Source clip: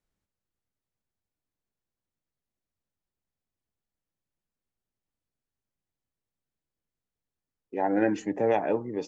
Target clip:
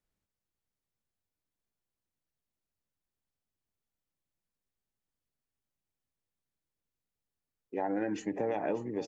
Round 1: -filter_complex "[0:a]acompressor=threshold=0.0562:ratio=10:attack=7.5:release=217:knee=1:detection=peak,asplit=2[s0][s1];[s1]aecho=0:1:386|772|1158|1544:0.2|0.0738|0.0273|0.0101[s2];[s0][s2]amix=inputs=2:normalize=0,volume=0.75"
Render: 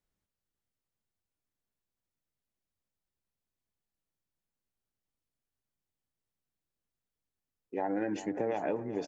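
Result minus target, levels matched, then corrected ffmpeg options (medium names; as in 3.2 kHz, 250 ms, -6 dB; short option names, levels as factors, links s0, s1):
echo 203 ms early
-filter_complex "[0:a]acompressor=threshold=0.0562:ratio=10:attack=7.5:release=217:knee=1:detection=peak,asplit=2[s0][s1];[s1]aecho=0:1:589|1178|1767|2356:0.2|0.0738|0.0273|0.0101[s2];[s0][s2]amix=inputs=2:normalize=0,volume=0.75"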